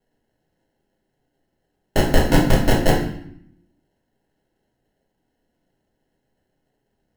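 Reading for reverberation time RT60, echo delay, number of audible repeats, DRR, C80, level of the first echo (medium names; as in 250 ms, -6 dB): 0.70 s, no echo, no echo, -3.0 dB, 8.5 dB, no echo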